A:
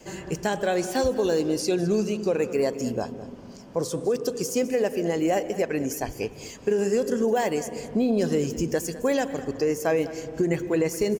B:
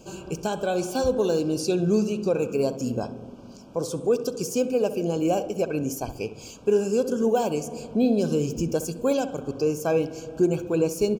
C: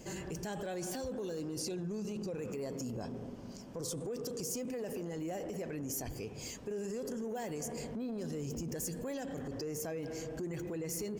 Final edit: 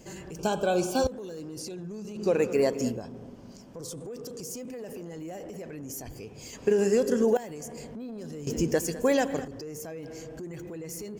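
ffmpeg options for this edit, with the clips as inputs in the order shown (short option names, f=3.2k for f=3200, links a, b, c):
-filter_complex "[0:a]asplit=3[a][b][c];[2:a]asplit=5[d][e][f][g][h];[d]atrim=end=0.392[i];[1:a]atrim=start=0.388:end=1.072[j];[e]atrim=start=1.068:end=2.3[k];[a]atrim=start=2.14:end=3.02[l];[f]atrim=start=2.86:end=6.532[m];[b]atrim=start=6.528:end=7.372[n];[g]atrim=start=7.368:end=8.472[o];[c]atrim=start=8.468:end=9.452[p];[h]atrim=start=9.448[q];[i][j]acrossfade=d=0.004:c1=hsin:c2=hsin[r];[r][k]acrossfade=d=0.004:c1=hsin:c2=hsin[s];[s][l]acrossfade=d=0.16:c1=tri:c2=tri[t];[t][m]acrossfade=d=0.16:c1=tri:c2=tri[u];[u][n]acrossfade=d=0.004:c1=hsin:c2=hsin[v];[v][o]acrossfade=d=0.004:c1=hsin:c2=hsin[w];[w][p]acrossfade=d=0.004:c1=hsin:c2=hsin[x];[x][q]acrossfade=d=0.004:c1=hsin:c2=hsin"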